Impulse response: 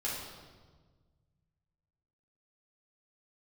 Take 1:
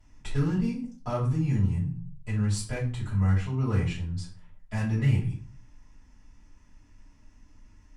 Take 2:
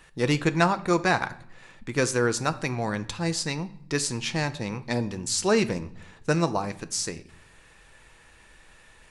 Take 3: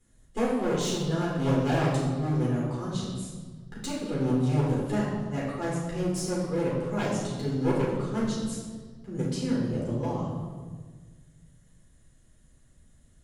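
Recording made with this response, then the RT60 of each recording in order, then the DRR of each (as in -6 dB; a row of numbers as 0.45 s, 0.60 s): 3; 0.40 s, no single decay rate, 1.5 s; -9.5 dB, 10.5 dB, -6.5 dB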